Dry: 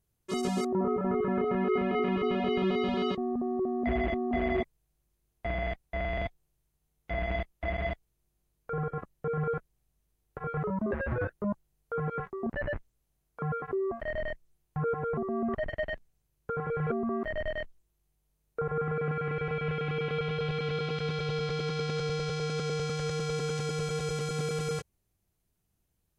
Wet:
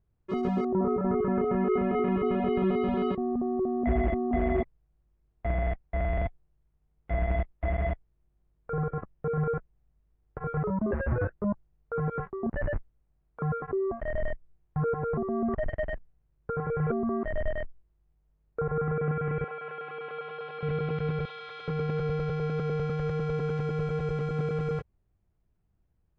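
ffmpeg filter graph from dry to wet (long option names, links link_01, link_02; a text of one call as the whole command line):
ffmpeg -i in.wav -filter_complex "[0:a]asettb=1/sr,asplit=3[link_01][link_02][link_03];[link_01]atrim=end=19.444[link_04];[link_02]atrim=start=19.44:end=20.63,asetpts=PTS-STARTPTS,afade=type=in:duration=0.004:curve=qsin,afade=type=out:start_time=1.186:duration=0.004:curve=qsin,highpass=690,lowpass=7100,equalizer=frequency=2100:width_type=o:width=0.39:gain=-6[link_05];[link_03]atrim=start=20.626[link_06];[link_04][link_05]acrossfade=duration=0.004:curve1=hsin:curve2=qsin[link_07];[link_07][link_06]acrossfade=duration=0.004:curve1=qsin:curve2=hsin,asettb=1/sr,asplit=3[link_08][link_09][link_10];[link_08]atrim=end=21.254[link_11];[link_09]atrim=start=21.25:end=21.68,asetpts=PTS-STARTPTS,afade=type=in:duration=0.004:curve=qsin,afade=type=out:start_time=0.426:duration=0.004:curve=qsin,highpass=1100,equalizer=frequency=3600:width=4.5:gain=9,volume=30.5dB,asoftclip=hard,volume=-30.5dB[link_12];[link_10]atrim=start=21.676[link_13];[link_11][link_12]acrossfade=duration=0.004:curve1=hsin:curve2=qsin[link_14];[link_14][link_13]acrossfade=duration=0.004:curve1=qsin:curve2=hsin,lowpass=1700,lowshelf=frequency=97:gain=8,acontrast=76,volume=-5.5dB" out.wav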